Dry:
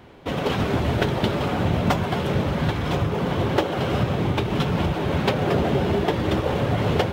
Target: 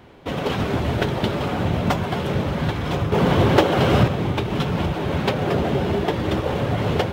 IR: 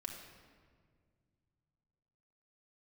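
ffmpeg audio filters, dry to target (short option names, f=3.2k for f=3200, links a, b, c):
-filter_complex "[0:a]asettb=1/sr,asplit=3[a][b][c];[a]atrim=end=3.124[d];[b]atrim=start=3.12:end=4.08,asetpts=PTS-STARTPTS,afade=t=in:d=0.004:c=qsin,afade=t=out:st=0.956:d=0.004:c=qsin,acontrast=68[e];[c]atrim=start=4.076[f];[d][e]acrossfade=d=0.004:c1=hsin:c2=qsin[g];[g][f]acrossfade=d=0.004:c1=qsin:c2=hsin"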